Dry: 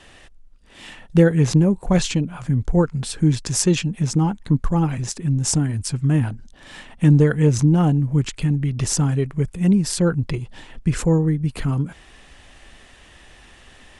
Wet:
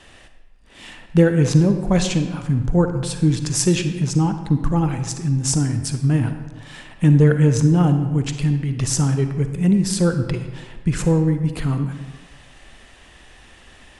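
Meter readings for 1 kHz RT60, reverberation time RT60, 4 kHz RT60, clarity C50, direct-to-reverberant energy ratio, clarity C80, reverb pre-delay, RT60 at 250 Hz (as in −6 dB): 1.4 s, 1.3 s, 0.85 s, 8.0 dB, 7.5 dB, 10.0 dB, 38 ms, 1.2 s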